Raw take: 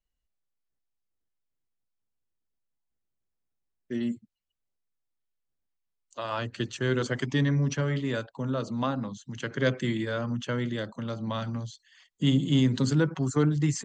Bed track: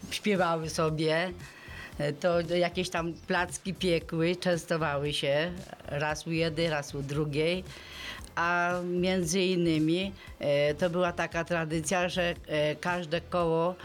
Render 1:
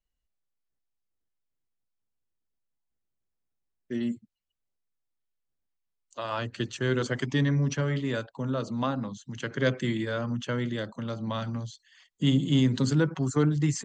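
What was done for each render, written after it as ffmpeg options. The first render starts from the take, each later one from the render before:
-af anull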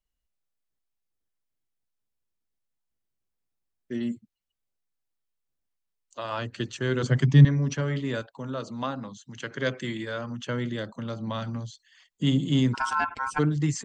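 -filter_complex "[0:a]asettb=1/sr,asplit=3[a][b][c];[a]atrim=end=7.034[d];[b]atrim=start=7.03:end=7.45,asetpts=PTS-STARTPTS,afade=t=in:d=0.004:c=qsin,afade=t=out:st=0.416:d=0.004:c=qsin,equalizer=f=140:t=o:w=0.81:g=14.5[e];[c]atrim=start=7.446[f];[d][e]acrossfade=d=0.004:c1=hsin:c2=qsin[g];[g][f]acrossfade=d=0.004:c1=qsin:c2=hsin,asettb=1/sr,asplit=3[h][i][j];[h]atrim=end=8.224[k];[i]atrim=start=8.22:end=10.44,asetpts=PTS-STARTPTS,afade=t=in:d=0.004:c=qsin,afade=t=out:st=2.216:d=0.004:c=qsin,lowshelf=f=390:g=-6[l];[j]atrim=start=10.436[m];[k][l]acrossfade=d=0.004:c1=hsin:c2=qsin[n];[n][m]acrossfade=d=0.004:c1=qsin:c2=hsin,asplit=3[o][p][q];[o]afade=t=out:st=12.73:d=0.02[r];[p]aeval=exprs='val(0)*sin(2*PI*1200*n/s)':c=same,afade=t=in:st=12.73:d=0.02,afade=t=out:st=13.38:d=0.02[s];[q]afade=t=in:st=13.38:d=0.02[t];[r][s][t]amix=inputs=3:normalize=0"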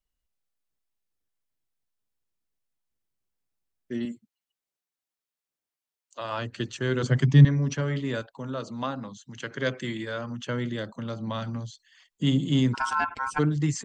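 -filter_complex "[0:a]asettb=1/sr,asplit=3[a][b][c];[a]atrim=end=4.054[d];[b]atrim=start=4.05:end=6.21,asetpts=PTS-STARTPTS,afade=t=in:d=0.004:c=qsin,afade=t=out:st=2.156:d=0.004:c=qsin,highpass=f=360:p=1[e];[c]atrim=start=6.206[f];[d][e]acrossfade=d=0.004:c1=hsin:c2=qsin[g];[g][f]acrossfade=d=0.004:c1=qsin:c2=hsin"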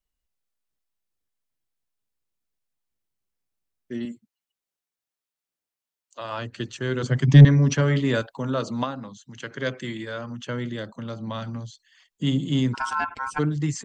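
-filter_complex "[0:a]asplit=3[a][b][c];[a]afade=t=out:st=7.27:d=0.02[d];[b]acontrast=85,afade=t=in:st=7.27:d=0.02,afade=t=out:st=8.83:d=0.02[e];[c]afade=t=in:st=8.83:d=0.02[f];[d][e][f]amix=inputs=3:normalize=0"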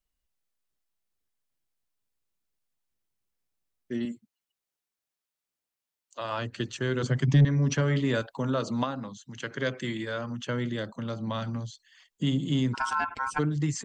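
-af "acompressor=threshold=-25dB:ratio=2"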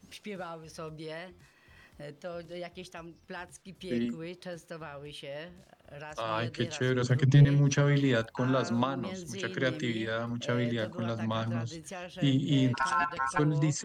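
-filter_complex "[1:a]volume=-13.5dB[a];[0:a][a]amix=inputs=2:normalize=0"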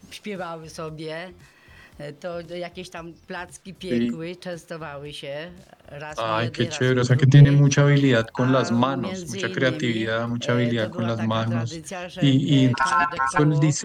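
-af "volume=8.5dB"

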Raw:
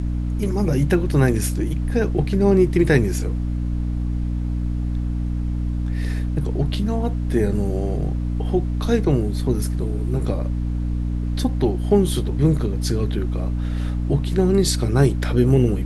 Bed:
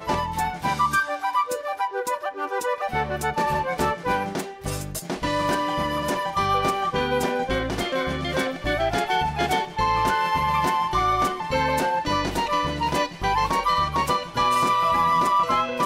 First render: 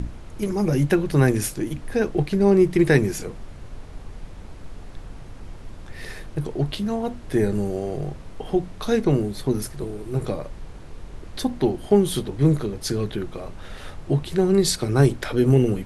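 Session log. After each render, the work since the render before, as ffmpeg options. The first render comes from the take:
-af "bandreject=f=60:t=h:w=6,bandreject=f=120:t=h:w=6,bandreject=f=180:t=h:w=6,bandreject=f=240:t=h:w=6,bandreject=f=300:t=h:w=6"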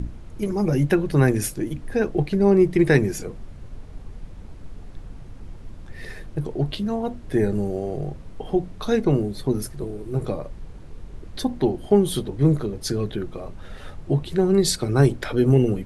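-af "afftdn=nr=6:nf=-40"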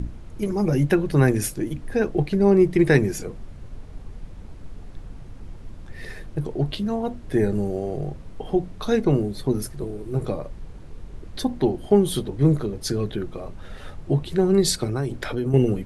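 -filter_complex "[0:a]asettb=1/sr,asplit=3[a][b][c];[a]atrim=end=14.844[d];[b]atrim=start=14.84:end=15.54,asetpts=PTS-STARTPTS,afade=t=in:d=0.004:c=qsin,afade=t=out:st=0.696:d=0.004:c=qsin,acompressor=threshold=-21dB:ratio=6:attack=3.2:release=140:knee=1:detection=peak[e];[c]atrim=start=15.536[f];[d][e]acrossfade=d=0.004:c1=hsin:c2=qsin[g];[g][f]acrossfade=d=0.004:c1=qsin:c2=hsin"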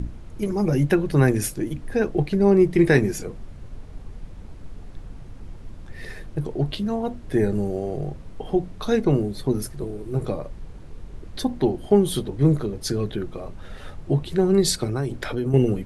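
-filter_complex "[0:a]asettb=1/sr,asplit=3[a][b][c];[a]atrim=end=2.704[d];[b]atrim=start=2.7:end=3.11,asetpts=PTS-STARTPTS,afade=t=in:d=0.004:c=qsin,afade=t=out:st=0.406:d=0.004:c=qsin,asplit=2[e][f];[f]adelay=24,volume=-10.5dB[g];[e][g]amix=inputs=2:normalize=0,atrim=end_sample=18081[h];[c]atrim=start=3.106[i];[d][h]acrossfade=d=0.004:c1=hsin:c2=qsin[j];[j][i]acrossfade=d=0.004:c1=qsin:c2=hsin"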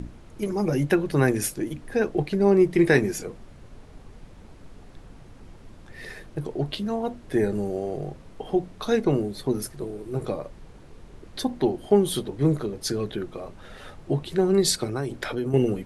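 -af "lowshelf=f=150:g=-10"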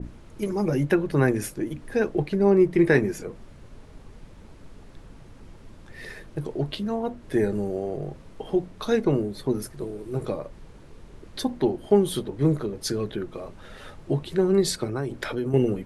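-af "bandreject=f=740:w=16,adynamicequalizer=threshold=0.00562:dfrequency=2600:dqfactor=0.7:tfrequency=2600:tqfactor=0.7:attack=5:release=100:ratio=0.375:range=4:mode=cutabove:tftype=highshelf"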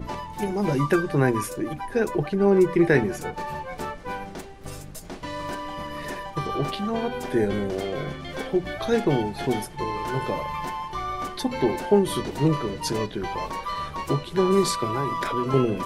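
-filter_complex "[1:a]volume=-9dB[a];[0:a][a]amix=inputs=2:normalize=0"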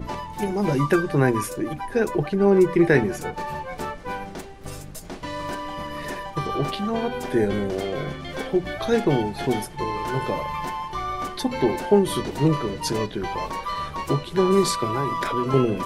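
-af "volume=1.5dB"

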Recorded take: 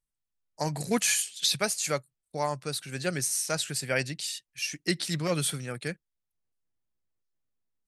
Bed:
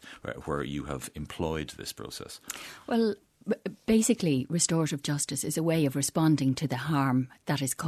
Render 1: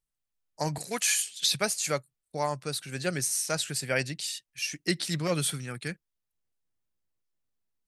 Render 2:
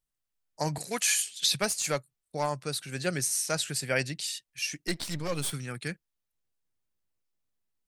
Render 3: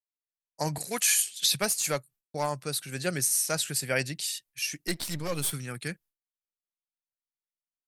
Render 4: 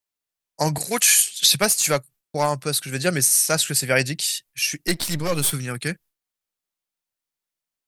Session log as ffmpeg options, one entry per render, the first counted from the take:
-filter_complex "[0:a]asettb=1/sr,asplit=3[a][b][c];[a]atrim=end=0.784[d];[b]atrim=start=0.78:end=1.19,asetpts=PTS-STARTPTS,afade=t=in:d=0.004:c=qsin,afade=t=out:st=0.406:d=0.004:c=qsin,highpass=f=820:p=1[e];[c]atrim=start=1.186[f];[d][e]acrossfade=d=0.004:c1=hsin:c2=qsin[g];[g][f]acrossfade=d=0.004:c1=qsin:c2=hsin,asettb=1/sr,asplit=3[h][i][j];[h]atrim=end=5.524[k];[i]atrim=start=5.52:end=5.92,asetpts=PTS-STARTPTS,afade=t=in:d=0.004:c=qsin,afade=t=out:st=0.396:d=0.004:c=qsin,equalizer=f=560:t=o:w=0.77:g=-7.5[l];[j]atrim=start=5.916[m];[k][l]acrossfade=d=0.004:c1=hsin:c2=qsin[n];[n][m]acrossfade=d=0.004:c1=qsin:c2=hsin"
-filter_complex "[0:a]asettb=1/sr,asplit=3[a][b][c];[a]atrim=end=1.614[d];[b]atrim=start=1.61:end=2.65,asetpts=PTS-STARTPTS,afade=t=in:d=0.004:c=qsin,afade=t=out:st=1.036:d=0.004:c=qsin,aeval=exprs='clip(val(0),-1,0.0668)':c=same[e];[c]atrim=start=2.646[f];[d][e]acrossfade=d=0.004:c1=hsin:c2=qsin[g];[g][f]acrossfade=d=0.004:c1=qsin:c2=hsin,asettb=1/sr,asplit=3[h][i][j];[h]atrim=end=4.874[k];[i]atrim=start=4.87:end=5.53,asetpts=PTS-STARTPTS,afade=t=in:d=0.004:c=qsin,afade=t=out:st=0.656:d=0.004:c=qsin,aeval=exprs='if(lt(val(0),0),0.251*val(0),val(0))':c=same[l];[j]atrim=start=5.526[m];[k][l]acrossfade=d=0.004:c1=hsin:c2=qsin[n];[n][m]acrossfade=d=0.004:c1=qsin:c2=hsin"
-af "agate=range=-33dB:threshold=-52dB:ratio=3:detection=peak,equalizer=f=13k:t=o:w=0.64:g=10"
-af "volume=8.5dB,alimiter=limit=-3dB:level=0:latency=1"

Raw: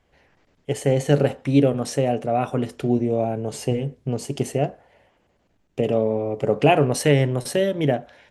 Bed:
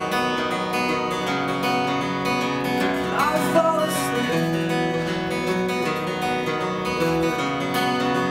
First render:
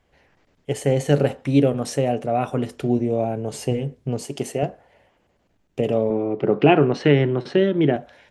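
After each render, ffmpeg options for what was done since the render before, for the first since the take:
-filter_complex "[0:a]asettb=1/sr,asplit=3[a][b][c];[a]atrim=end=4.224[d];[b]atrim=start=4.22:end=4.63,asetpts=PTS-STARTPTS,afade=t=in:d=0.004:c=qsin,afade=t=out:st=0.406:d=0.004:c=qsin,highpass=f=240:p=1[e];[c]atrim=start=4.626[f];[d][e]acrossfade=d=0.004:c1=hsin:c2=qsin[g];[g][f]acrossfade=d=0.004:c1=qsin:c2=hsin,asettb=1/sr,asplit=3[h][i][j];[h]atrim=end=6.104[k];[i]atrim=start=6.1:end=7.96,asetpts=PTS-STARTPTS,afade=t=in:d=0.004:c=qsin,afade=t=out:st=1.856:d=0.004:c=qsin,highpass=120,equalizer=f=180:t=q:w=4:g=7,equalizer=f=350:t=q:w=4:g=10,equalizer=f=560:t=q:w=4:g=-5,equalizer=f=1.4k:t=q:w=4:g=5,lowpass=f=4.1k:w=0.5412,lowpass=f=4.1k:w=1.3066[l];[j]atrim=start=7.956[m];[k][l]acrossfade=d=0.004:c1=hsin:c2=qsin[n];[n][m]acrossfade=d=0.004:c1=qsin:c2=hsin"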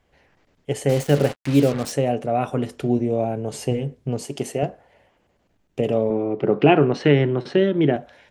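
-filter_complex "[0:a]asettb=1/sr,asplit=3[a][b][c];[a]atrim=end=0.894[d];[b]atrim=start=0.89:end=1.92,asetpts=PTS-STARTPTS,afade=t=in:d=0.004:c=qsin,afade=t=out:st=1.026:d=0.004:c=qsin,acrusher=bits=4:mix=0:aa=0.5[e];[c]atrim=start=1.916[f];[d][e]acrossfade=d=0.004:c1=hsin:c2=qsin[g];[g][f]acrossfade=d=0.004:c1=qsin:c2=hsin"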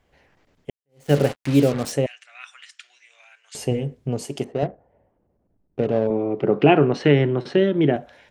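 -filter_complex "[0:a]asettb=1/sr,asplit=3[a][b][c];[a]atrim=end=2.064[d];[b]atrim=start=2.06:end=3.55,asetpts=PTS-STARTPTS,afade=t=in:d=0.004:c=qsin,afade=t=out:st=1.486:d=0.004:c=qsin,asuperpass=centerf=3800:order=8:qfactor=0.57[e];[c]atrim=start=3.546[f];[d][e]acrossfade=d=0.004:c1=hsin:c2=qsin[g];[g][f]acrossfade=d=0.004:c1=qsin:c2=hsin,asettb=1/sr,asplit=3[h][i][j];[h]atrim=end=4.444[k];[i]atrim=start=4.44:end=6.07,asetpts=PTS-STARTPTS,afade=t=in:d=0.004:c=qsin,afade=t=out:st=1.626:d=0.004:c=qsin,adynamicsmooth=sensitivity=1.5:basefreq=700[l];[j]atrim=start=6.066[m];[k][l]acrossfade=d=0.004:c1=hsin:c2=qsin[n];[n][m]acrossfade=d=0.004:c1=qsin:c2=hsin,asplit=2[o][p];[o]atrim=end=0.7,asetpts=PTS-STARTPTS,afade=t=out:st=0.696:d=0.004:c=hsin[q];[p]atrim=start=0.7,asetpts=PTS-STARTPTS,afade=t=in:d=0.41:c=exp[r];[q][r]concat=n=2:v=0:a=1"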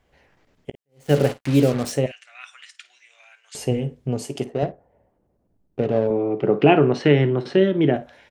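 -af "aecho=1:1:16|53:0.158|0.15"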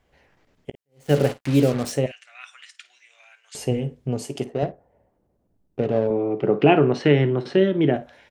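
-af "volume=-1dB"

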